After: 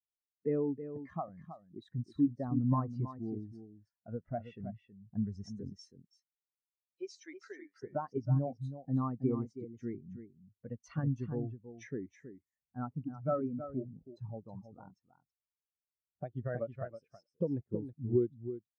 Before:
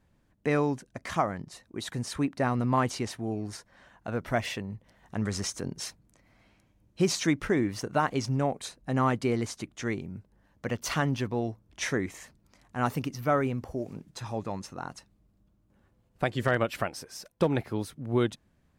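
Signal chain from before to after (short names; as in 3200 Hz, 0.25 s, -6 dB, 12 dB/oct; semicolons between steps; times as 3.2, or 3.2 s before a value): 5.74–7.83 HPF 690 Hz 12 dB/oct; compressor 2:1, threshold -34 dBFS, peak gain reduction 8.5 dB; echo 0.322 s -4.5 dB; spectral expander 2.5:1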